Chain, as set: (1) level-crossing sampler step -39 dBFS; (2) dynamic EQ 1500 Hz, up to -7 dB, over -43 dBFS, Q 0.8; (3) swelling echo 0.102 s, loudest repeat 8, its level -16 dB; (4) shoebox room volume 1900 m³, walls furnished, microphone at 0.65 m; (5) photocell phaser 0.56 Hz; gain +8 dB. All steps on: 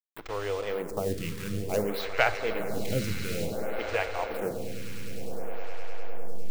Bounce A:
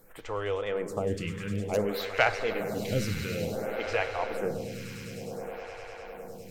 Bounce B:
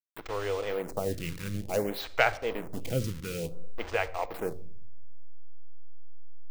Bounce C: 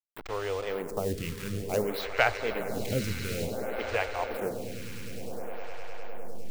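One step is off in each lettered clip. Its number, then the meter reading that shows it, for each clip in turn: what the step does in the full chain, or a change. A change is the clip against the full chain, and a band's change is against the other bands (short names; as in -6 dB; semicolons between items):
1, distortion -8 dB; 3, momentary loudness spread change -4 LU; 4, crest factor change +3.5 dB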